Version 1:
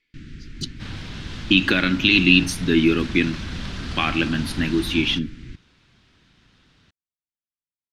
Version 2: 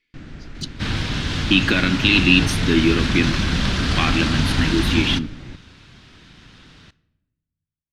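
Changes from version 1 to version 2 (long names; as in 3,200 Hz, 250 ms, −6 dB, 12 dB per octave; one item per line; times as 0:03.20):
first sound: remove Butterworth band-reject 760 Hz, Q 0.56
second sound +7.5 dB
reverb: on, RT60 1.1 s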